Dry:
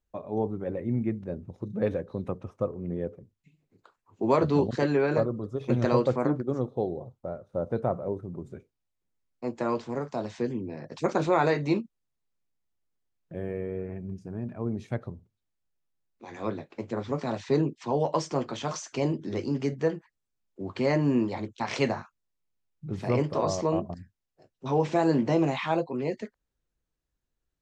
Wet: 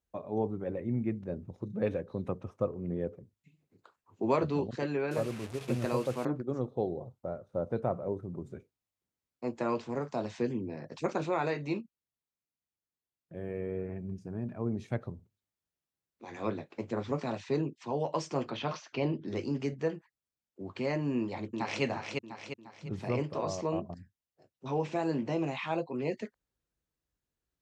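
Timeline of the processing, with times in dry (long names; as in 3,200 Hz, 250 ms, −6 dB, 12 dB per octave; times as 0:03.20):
0:05.11–0:06.25: linear delta modulator 64 kbit/s, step −34.5 dBFS
0:18.50–0:19.28: low-pass filter 4,500 Hz 24 dB per octave
0:21.18–0:21.83: delay throw 350 ms, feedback 45%, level −6 dB
whole clip: high-pass filter 53 Hz; dynamic equaliser 2,600 Hz, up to +6 dB, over −57 dBFS, Q 4.4; speech leveller within 3 dB 0.5 s; level −5 dB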